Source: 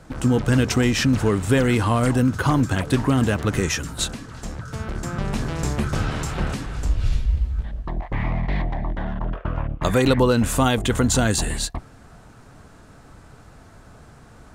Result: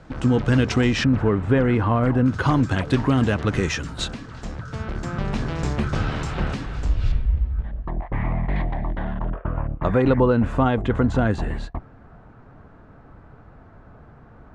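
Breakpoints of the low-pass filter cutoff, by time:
4,400 Hz
from 0:01.04 1,800 Hz
from 0:02.26 4,700 Hz
from 0:07.12 2,000 Hz
from 0:08.56 3,600 Hz
from 0:09.30 1,600 Hz

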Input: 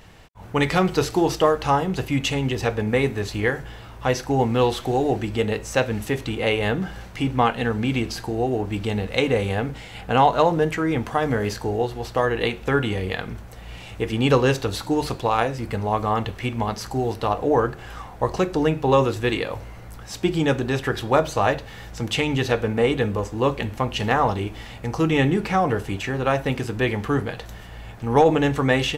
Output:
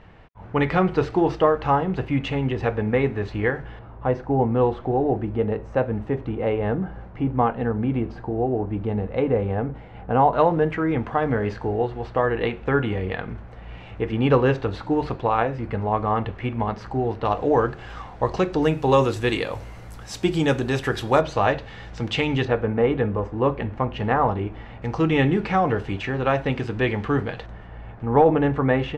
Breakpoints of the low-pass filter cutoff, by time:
2,100 Hz
from 0:03.79 1,100 Hz
from 0:10.33 2,100 Hz
from 0:17.25 4,700 Hz
from 0:18.63 11,000 Hz
from 0:21.21 4,000 Hz
from 0:22.45 1,700 Hz
from 0:24.82 3,500 Hz
from 0:27.46 1,600 Hz

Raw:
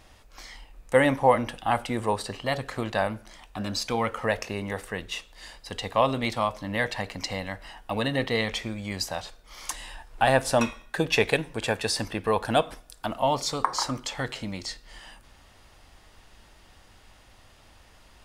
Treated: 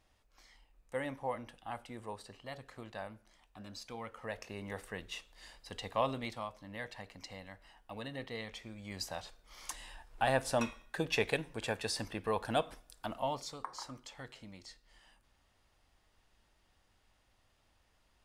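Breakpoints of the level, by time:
0:04.11 −18 dB
0:04.76 −10 dB
0:06.08 −10 dB
0:06.49 −16.5 dB
0:08.61 −16.5 dB
0:09.06 −9.5 dB
0:13.16 −9.5 dB
0:13.59 −17.5 dB

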